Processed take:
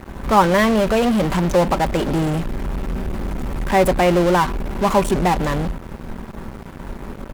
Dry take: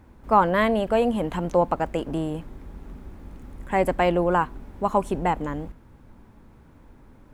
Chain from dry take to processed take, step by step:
comb filter 5.2 ms, depth 44%
in parallel at −10 dB: fuzz pedal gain 44 dB, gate −51 dBFS
on the sum: level +1 dB

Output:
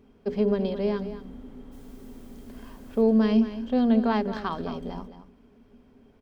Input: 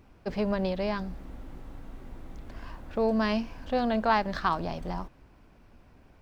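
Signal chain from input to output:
mains-hum notches 60/120/180/240/300/360/420 Hz
hollow resonant body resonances 240/410/3,200 Hz, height 18 dB, ringing for 85 ms
0:01.71–0:03.01: background noise white −57 dBFS
single-tap delay 218 ms −12 dB
level −5.5 dB

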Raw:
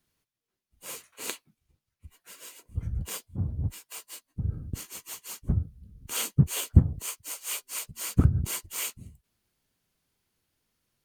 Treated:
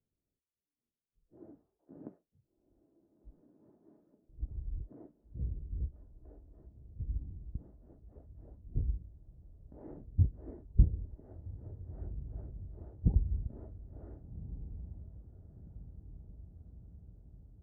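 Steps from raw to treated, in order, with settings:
transistor ladder low-pass 840 Hz, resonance 35%
feedback delay with all-pass diffusion 937 ms, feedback 60%, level −13 dB
change of speed 0.627×

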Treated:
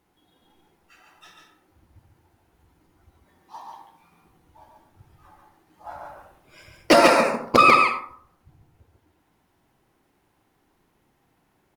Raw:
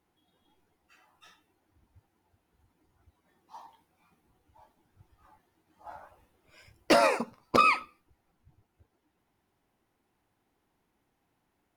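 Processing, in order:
single-tap delay 140 ms −4 dB
on a send at −7 dB: convolution reverb RT60 0.60 s, pre-delay 52 ms
on the sum: level +7 dB

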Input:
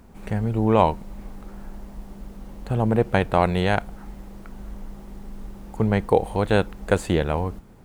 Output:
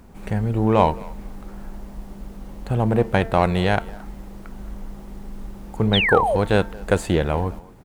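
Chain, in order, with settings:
hum removal 225 Hz, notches 9
in parallel at −10 dB: gain into a clipping stage and back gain 20 dB
on the sum: far-end echo of a speakerphone 220 ms, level −20 dB
sound drawn into the spectrogram fall, 0:05.93–0:06.37, 470–3,900 Hz −20 dBFS

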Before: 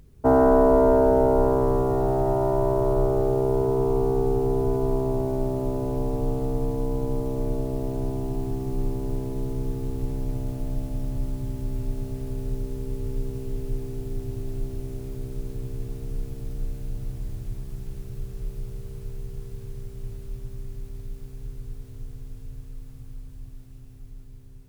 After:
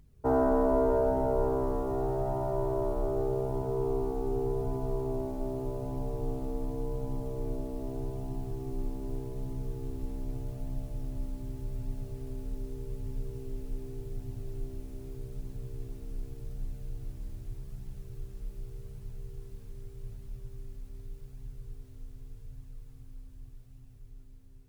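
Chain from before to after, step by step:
flanger 0.84 Hz, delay 0.9 ms, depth 3 ms, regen −44%
level −4.5 dB

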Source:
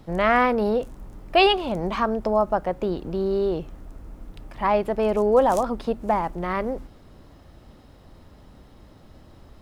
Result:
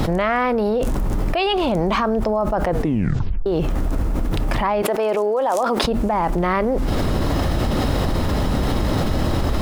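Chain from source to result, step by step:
0:02.67: tape stop 0.79 s
0:04.82–0:05.84: high-pass filter 380 Hz 12 dB per octave
envelope flattener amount 100%
level −5 dB

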